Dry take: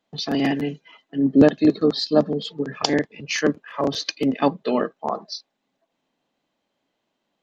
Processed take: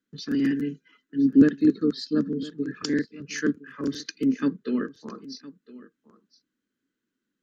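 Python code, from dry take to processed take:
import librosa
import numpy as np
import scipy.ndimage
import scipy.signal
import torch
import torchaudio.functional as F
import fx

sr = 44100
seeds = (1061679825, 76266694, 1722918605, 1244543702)

p1 = fx.curve_eq(x, sr, hz=(160.0, 260.0, 460.0, 720.0, 1500.0, 2200.0, 3500.0, 6900.0), db=(0, 6, -3, -29, 5, -6, -7, 1))
p2 = p1 + fx.echo_single(p1, sr, ms=1012, db=-19.0, dry=0)
y = p2 * 10.0 ** (-6.0 / 20.0)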